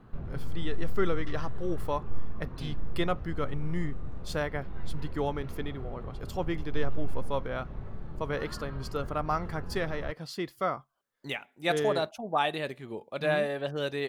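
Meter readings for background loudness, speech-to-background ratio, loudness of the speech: -43.0 LUFS, 9.5 dB, -33.5 LUFS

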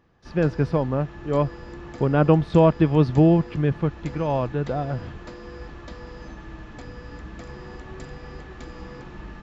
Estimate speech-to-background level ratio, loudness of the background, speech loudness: 18.5 dB, -40.5 LUFS, -22.0 LUFS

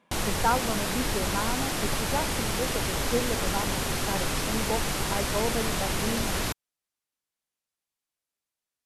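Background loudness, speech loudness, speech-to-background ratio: -28.5 LUFS, -33.5 LUFS, -5.0 dB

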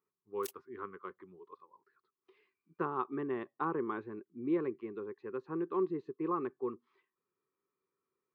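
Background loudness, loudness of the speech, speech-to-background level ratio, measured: -50.0 LUFS, -38.0 LUFS, 12.0 dB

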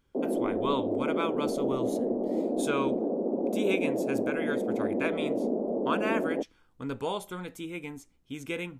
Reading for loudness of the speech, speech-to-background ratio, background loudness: -35.0 LUFS, -5.0 dB, -30.0 LUFS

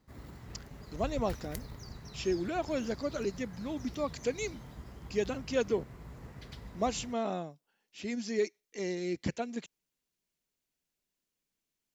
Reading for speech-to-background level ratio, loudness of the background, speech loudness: 12.0 dB, -47.5 LUFS, -35.5 LUFS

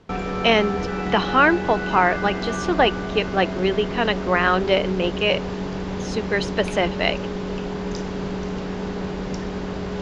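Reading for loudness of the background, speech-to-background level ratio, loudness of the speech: -28.0 LUFS, 6.5 dB, -21.5 LUFS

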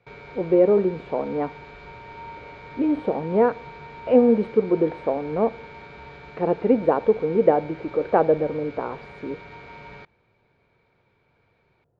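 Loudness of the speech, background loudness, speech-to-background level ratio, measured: -22.0 LUFS, -41.5 LUFS, 19.5 dB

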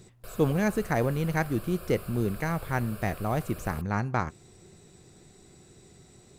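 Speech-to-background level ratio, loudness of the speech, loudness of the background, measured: 15.5 dB, -29.0 LUFS, -44.5 LUFS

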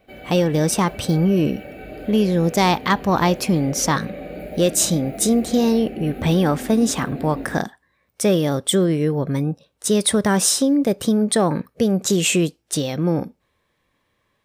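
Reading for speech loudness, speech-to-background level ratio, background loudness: -19.5 LUFS, 15.0 dB, -34.5 LUFS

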